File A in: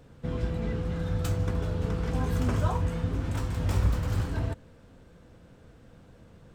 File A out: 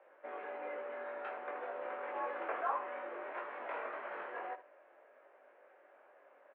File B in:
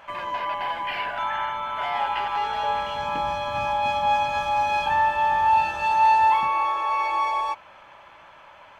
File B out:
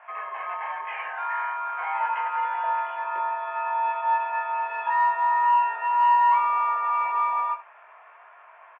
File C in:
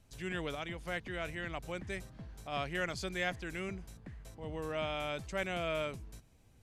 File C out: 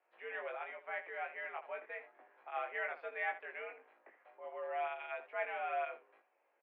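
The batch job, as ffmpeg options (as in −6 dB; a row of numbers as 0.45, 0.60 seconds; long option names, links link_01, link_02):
-af "highpass=frequency=420:width_type=q:width=0.5412,highpass=frequency=420:width_type=q:width=1.307,lowpass=frequency=2300:width_type=q:width=0.5176,lowpass=frequency=2300:width_type=q:width=0.7071,lowpass=frequency=2300:width_type=q:width=1.932,afreqshift=80,acontrast=36,aecho=1:1:20|79:0.668|0.237,volume=-8.5dB"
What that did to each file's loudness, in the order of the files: −12.0, −1.5, −3.0 LU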